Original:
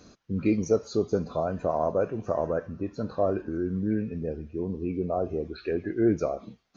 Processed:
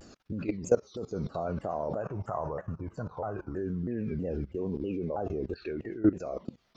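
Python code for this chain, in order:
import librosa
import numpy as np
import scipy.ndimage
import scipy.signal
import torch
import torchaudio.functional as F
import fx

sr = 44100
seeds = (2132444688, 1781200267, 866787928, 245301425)

y = fx.low_shelf(x, sr, hz=170.0, db=-7.5, at=(4.55, 5.14))
y = fx.level_steps(y, sr, step_db=20)
y = fx.graphic_eq(y, sr, hz=(125, 250, 500, 1000, 2000, 4000), db=(4, -9, -4, 9, -6, -9), at=(2.02, 3.56))
y = fx.rider(y, sr, range_db=4, speed_s=0.5)
y = fx.vibrato_shape(y, sr, shape='saw_down', rate_hz=3.1, depth_cents=250.0)
y = F.gain(torch.from_numpy(y), 4.0).numpy()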